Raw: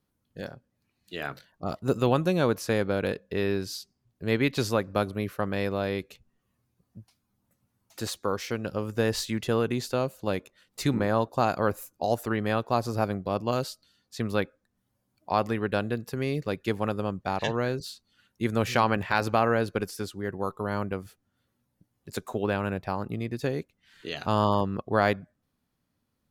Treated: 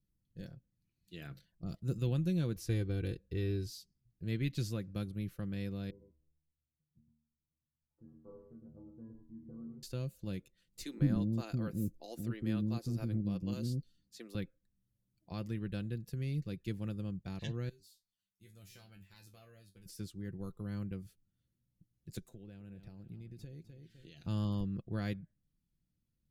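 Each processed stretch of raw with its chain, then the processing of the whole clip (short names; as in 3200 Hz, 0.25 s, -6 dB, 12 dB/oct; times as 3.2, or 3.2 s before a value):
2.56–3.7 low shelf 230 Hz +6.5 dB + comb 2.6 ms, depth 61%
5.9–9.83 steep low-pass 1100 Hz + metallic resonator 74 Hz, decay 0.66 s, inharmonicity 0.008 + echo 0.108 s -6.5 dB
10.83–14.35 bell 260 Hz +8.5 dB 0.98 oct + bands offset in time highs, lows 0.16 s, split 390 Hz
17.69–19.86 pre-emphasis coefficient 0.8 + resonator 96 Hz, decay 0.19 s, mix 100%
22.19–24.26 feedback echo 0.254 s, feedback 37%, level -16 dB + compressor 3:1, threshold -41 dBFS + bell 1100 Hz -8 dB 0.49 oct
whole clip: passive tone stack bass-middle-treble 10-0-1; comb 5.9 ms, depth 41%; dynamic EQ 680 Hz, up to -4 dB, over -59 dBFS, Q 0.94; gain +8.5 dB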